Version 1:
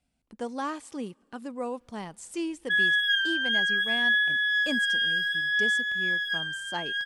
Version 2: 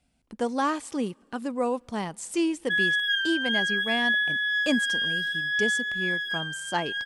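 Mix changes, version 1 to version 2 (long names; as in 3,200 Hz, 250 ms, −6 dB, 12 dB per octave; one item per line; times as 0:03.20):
speech +6.5 dB
background: send off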